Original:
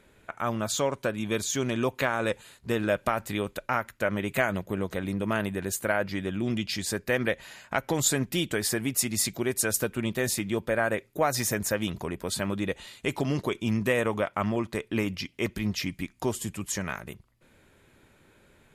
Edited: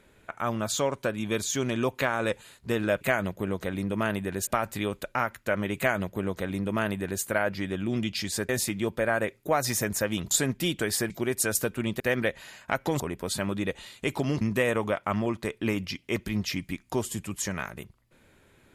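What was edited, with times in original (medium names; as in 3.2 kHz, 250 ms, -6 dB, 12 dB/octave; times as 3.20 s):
4.31–5.77 s: copy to 3.01 s
7.03–8.03 s: swap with 10.19–12.01 s
8.82–9.29 s: delete
13.42–13.71 s: delete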